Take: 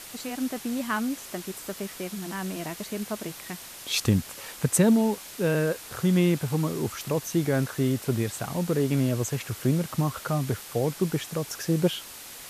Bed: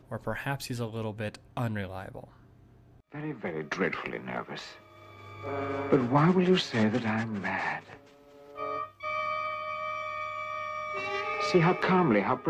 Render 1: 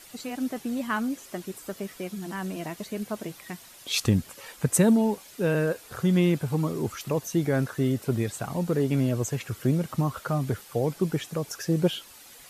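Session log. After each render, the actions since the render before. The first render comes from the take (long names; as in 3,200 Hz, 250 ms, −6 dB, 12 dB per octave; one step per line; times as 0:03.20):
broadband denoise 9 dB, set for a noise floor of −43 dBFS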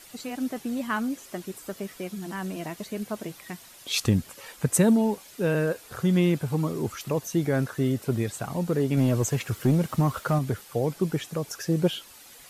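0:08.97–0:10.39: leveller curve on the samples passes 1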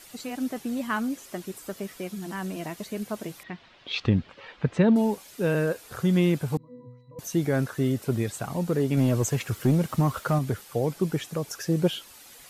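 0:03.43–0:04.96: low-pass filter 3,700 Hz 24 dB per octave
0:06.57–0:07.19: resonances in every octave B, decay 0.66 s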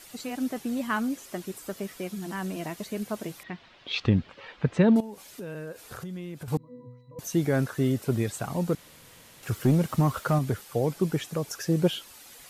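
0:05.00–0:06.48: downward compressor 8 to 1, threshold −35 dBFS
0:08.75–0:09.43: fill with room tone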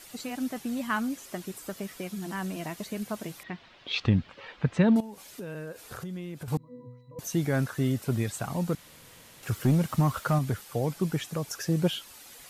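dynamic equaliser 410 Hz, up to −5 dB, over −38 dBFS, Q 1.2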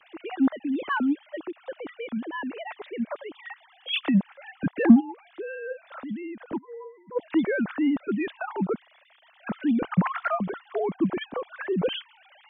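three sine waves on the formant tracks
in parallel at −6.5 dB: soft clipping −18 dBFS, distortion −9 dB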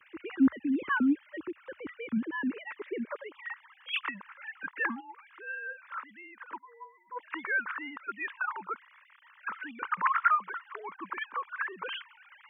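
high-pass filter sweep 70 Hz → 1,000 Hz, 0:01.93–0:03.60
phaser with its sweep stopped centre 1,700 Hz, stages 4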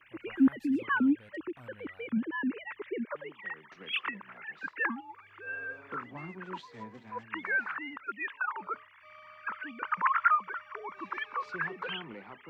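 mix in bed −21.5 dB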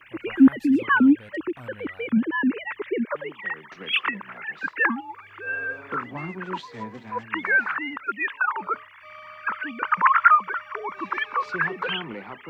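level +9.5 dB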